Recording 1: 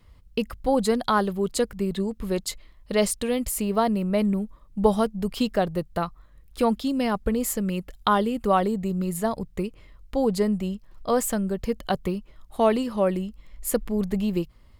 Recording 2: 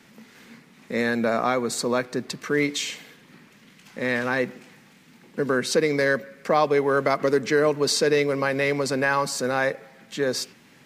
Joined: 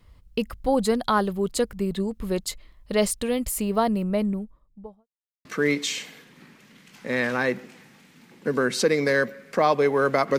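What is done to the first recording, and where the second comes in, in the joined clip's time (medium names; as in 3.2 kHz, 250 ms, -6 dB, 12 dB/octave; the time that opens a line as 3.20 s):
recording 1
3.90–5.08 s: studio fade out
5.08–5.45 s: mute
5.45 s: go over to recording 2 from 2.37 s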